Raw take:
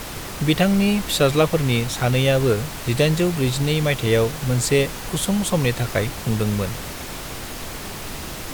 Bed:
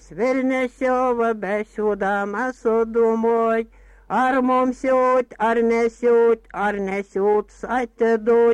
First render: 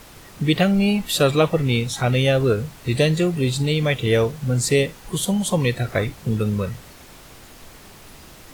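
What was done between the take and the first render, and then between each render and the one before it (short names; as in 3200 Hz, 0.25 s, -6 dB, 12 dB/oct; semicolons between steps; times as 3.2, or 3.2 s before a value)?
noise print and reduce 12 dB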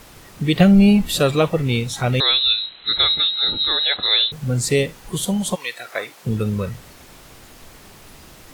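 0.6–1.2 low shelf 290 Hz +10.5 dB; 2.2–4.32 inverted band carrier 4000 Hz; 5.54–6.24 HPF 1300 Hz -> 430 Hz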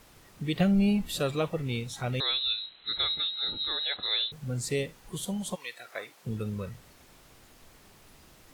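gain -12 dB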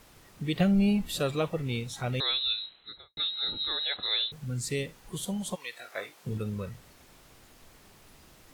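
2.62–3.17 studio fade out; 4.45–4.85 bell 650 Hz -12 dB -> -5.5 dB 1.1 oct; 5.71–6.38 doubler 20 ms -5 dB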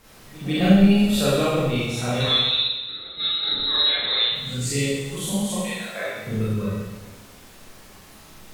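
pre-echo 0.148 s -19 dB; Schroeder reverb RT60 1.2 s, combs from 29 ms, DRR -9 dB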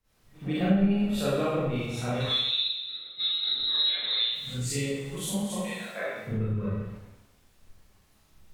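compressor 3:1, threshold -28 dBFS, peak gain reduction 14 dB; three-band expander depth 100%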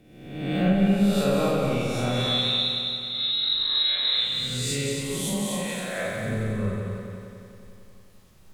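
spectral swells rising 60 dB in 0.96 s; multi-head echo 91 ms, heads second and third, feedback 57%, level -7.5 dB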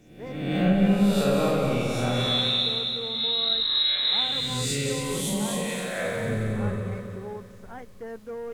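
add bed -20 dB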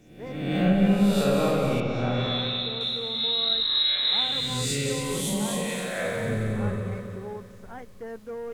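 1.8–2.81 air absorption 220 m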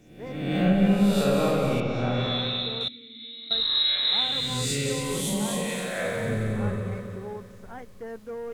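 2.88–3.51 vowel filter i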